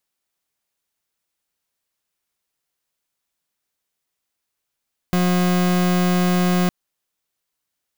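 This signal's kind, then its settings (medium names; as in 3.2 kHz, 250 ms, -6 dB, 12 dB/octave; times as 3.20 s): pulse 180 Hz, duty 39% -17.5 dBFS 1.56 s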